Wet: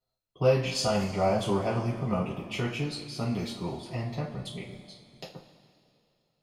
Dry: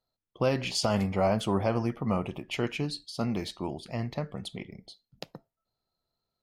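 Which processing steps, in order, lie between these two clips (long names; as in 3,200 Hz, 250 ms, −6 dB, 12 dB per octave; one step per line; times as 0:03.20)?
coupled-rooms reverb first 0.29 s, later 2.6 s, from −18 dB, DRR −7 dB
level −7.5 dB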